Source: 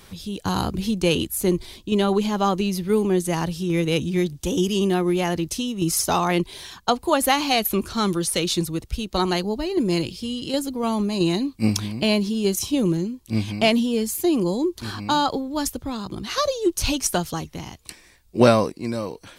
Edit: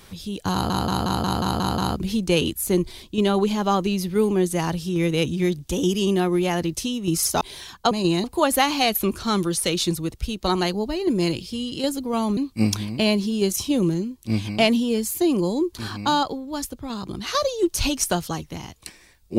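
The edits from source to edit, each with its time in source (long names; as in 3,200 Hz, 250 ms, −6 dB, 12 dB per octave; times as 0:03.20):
0:00.52: stutter 0.18 s, 8 plays
0:06.15–0:06.44: remove
0:11.07–0:11.40: move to 0:06.94
0:15.26–0:15.93: clip gain −4 dB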